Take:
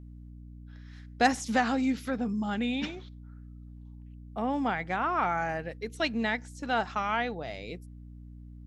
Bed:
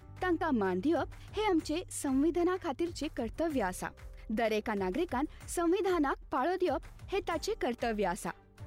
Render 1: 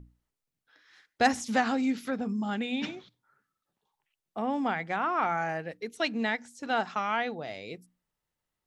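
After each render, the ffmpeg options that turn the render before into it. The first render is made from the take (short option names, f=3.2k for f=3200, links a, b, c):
-af "bandreject=f=60:t=h:w=6,bandreject=f=120:t=h:w=6,bandreject=f=180:t=h:w=6,bandreject=f=240:t=h:w=6,bandreject=f=300:t=h:w=6"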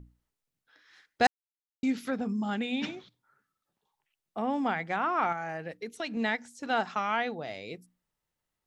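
-filter_complex "[0:a]asettb=1/sr,asplit=3[a][b][c];[a]atrim=end=5.324[d];[b]atrim=start=5.32:end=6.17,asetpts=PTS-STARTPTS,afade=t=in:d=0.004:c=qsin,afade=t=out:st=0.846:d=0.004:c=qsin,acompressor=threshold=-32dB:ratio=3:attack=3.2:release=140:knee=1:detection=peak[e];[c]atrim=start=6.166[f];[d][e]acrossfade=d=0.004:c1=hsin:c2=qsin[g];[g][f]acrossfade=d=0.004:c1=qsin:c2=hsin,asplit=3[h][i][j];[h]atrim=end=1.27,asetpts=PTS-STARTPTS,afade=t=out:st=1.266:d=0.004:c=hsin[k];[i]atrim=start=1.27:end=1.83,asetpts=PTS-STARTPTS,volume=0[l];[j]atrim=start=1.83,asetpts=PTS-STARTPTS,afade=t=in:d=0.004:c=hsin[m];[k][l][m]concat=n=3:v=0:a=1"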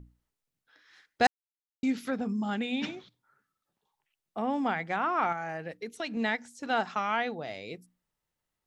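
-af anull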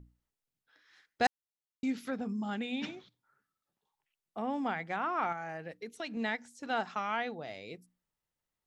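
-af "volume=-4.5dB"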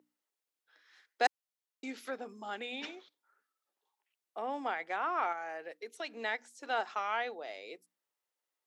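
-af "highpass=f=350:w=0.5412,highpass=f=350:w=1.3066"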